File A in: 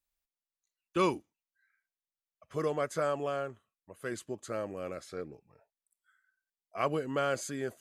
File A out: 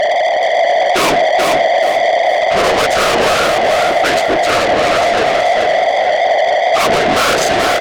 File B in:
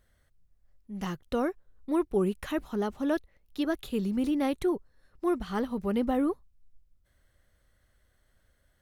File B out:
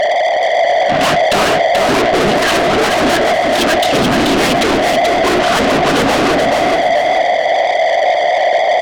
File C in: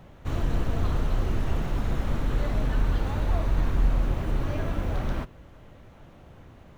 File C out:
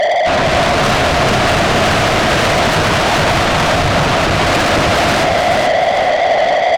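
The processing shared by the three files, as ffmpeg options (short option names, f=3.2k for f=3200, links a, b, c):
-filter_complex "[0:a]dynaudnorm=f=130:g=7:m=11dB,aeval=exprs='val(0)+0.0447*sin(2*PI*660*n/s)':c=same,adynamicsmooth=sensitivity=4:basefreq=840,afftfilt=real='hypot(re,im)*cos(2*PI*random(0))':imag='hypot(re,im)*sin(2*PI*random(1))':win_size=512:overlap=0.75,bandreject=f=60:t=h:w=6,bandreject=f=120:t=h:w=6,bandreject=f=180:t=h:w=6,bandreject=f=240:t=h:w=6,bandreject=f=300:t=h:w=6,bandreject=f=360:t=h:w=6,bandreject=f=420:t=h:w=6,bandreject=f=480:t=h:w=6,bandreject=f=540:t=h:w=6,asplit=2[a][b];[b]highpass=f=720:p=1,volume=39dB,asoftclip=type=tanh:threshold=-6.5dB[c];[a][c]amix=inputs=2:normalize=0,lowpass=f=3.7k:p=1,volume=-6dB,highshelf=f=2.3k:g=9.5,aecho=1:1:432|864|1296|1728:0.562|0.169|0.0506|0.0152,alimiter=level_in=5.5dB:limit=-1dB:release=50:level=0:latency=1,volume=-5dB" -ar 48000 -c:a libmp3lame -b:a 224k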